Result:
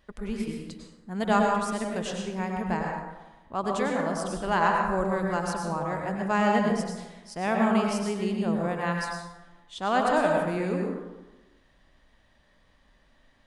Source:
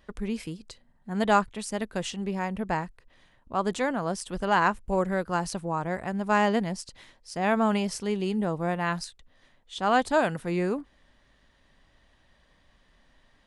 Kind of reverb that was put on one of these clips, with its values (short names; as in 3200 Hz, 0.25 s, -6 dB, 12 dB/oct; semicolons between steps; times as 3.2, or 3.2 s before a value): plate-style reverb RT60 1.1 s, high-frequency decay 0.5×, pre-delay 85 ms, DRR 0 dB; gain -3 dB